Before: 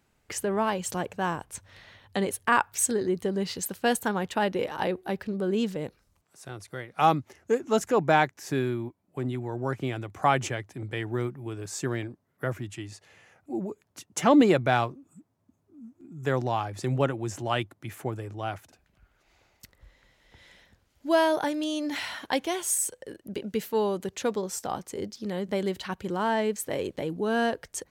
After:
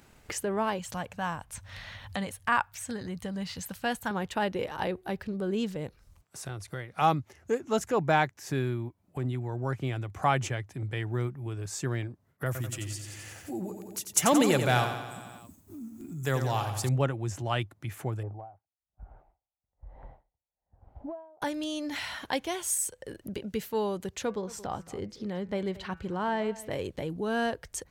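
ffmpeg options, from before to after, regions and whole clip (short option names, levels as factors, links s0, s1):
-filter_complex "[0:a]asettb=1/sr,asplit=3[s0][s1][s2];[s0]atrim=end=0.794[s3];[s1]atrim=start=0.79:end=4.11,asetpts=PTS-STARTPTS,afade=t=in:d=0.004:c=qsin,afade=t=out:st=3.316:d=0.004:c=qsin,acrossover=split=3100[s4][s5];[s5]acompressor=threshold=0.0141:ratio=4:attack=1:release=60[s6];[s4][s6]amix=inputs=2:normalize=0,equalizer=f=380:w=2.5:g=-14.5[s7];[s2]atrim=start=4.106[s8];[s3][s7]acrossfade=d=0.004:c1=hsin:c2=qsin[s9];[s9][s8]acrossfade=d=0.004:c1=qsin:c2=hsin,asettb=1/sr,asplit=3[s10][s11][s12];[s10]atrim=end=12.464[s13];[s11]atrim=start=12.46:end=16.89,asetpts=PTS-STARTPTS,afade=t=in:d=0.004:c=qsin,afade=t=out:st=4.426:d=0.004:c=qsin,aemphasis=mode=production:type=75fm,aecho=1:1:88|176|264|352|440|528|616:0.398|0.231|0.134|0.0777|0.0451|0.0261|0.0152,atrim=end_sample=195363[s14];[s12]atrim=start=16.886[s15];[s13][s14]acrossfade=d=0.004:c1=hsin:c2=qsin[s16];[s16][s15]acrossfade=d=0.004:c1=qsin:c2=hsin,asettb=1/sr,asplit=3[s17][s18][s19];[s17]atrim=end=18.234[s20];[s18]atrim=start=18.23:end=21.42,asetpts=PTS-STARTPTS,afade=t=in:d=0.004:c=qsin,afade=t=out:st=3.186:d=0.004:c=qsin,lowpass=f=780:t=q:w=4.4,acompressor=threshold=0.0631:ratio=4:attack=3.2:release=140:knee=1:detection=peak,aeval=exprs='val(0)*pow(10,-39*(0.5-0.5*cos(2*PI*1.1*n/s))/20)':c=same[s21];[s19]atrim=start=21.416[s22];[s20][s21]acrossfade=d=0.004:c1=hsin:c2=qsin[s23];[s23][s22]acrossfade=d=0.004:c1=qsin:c2=hsin,asettb=1/sr,asplit=3[s24][s25][s26];[s24]atrim=end=24.254[s27];[s25]atrim=start=24.25:end=26.71,asetpts=PTS-STARTPTS,afade=t=in:d=0.004:c=qsin,afade=t=out:st=2.456:d=0.004:c=qsin,lowpass=f=3100:p=1,bandreject=f=165.2:t=h:w=4,bandreject=f=330.4:t=h:w=4,bandreject=f=495.6:t=h:w=4,bandreject=f=660.8:t=h:w=4,bandreject=f=826:t=h:w=4,bandreject=f=991.2:t=h:w=4,bandreject=f=1156.4:t=h:w=4,bandreject=f=1321.6:t=h:w=4,bandreject=f=1486.8:t=h:w=4,bandreject=f=1652:t=h:w=4,bandreject=f=1817.2:t=h:w=4,bandreject=f=1982.4:t=h:w=4,bandreject=f=2147.6:t=h:w=4,bandreject=f=2312.8:t=h:w=4,bandreject=f=2478:t=h:w=4,bandreject=f=2643.2:t=h:w=4,bandreject=f=2808.4:t=h:w=4,aecho=1:1:225:0.112,atrim=end_sample=108486[s28];[s26]atrim=start=26.706[s29];[s27][s28]acrossfade=d=0.004:c1=hsin:c2=qsin[s30];[s30][s29]acrossfade=d=0.004:c1=qsin:c2=hsin,asubboost=boost=2.5:cutoff=140,agate=range=0.0224:threshold=0.00141:ratio=3:detection=peak,acompressor=mode=upward:threshold=0.0316:ratio=2.5,volume=0.75"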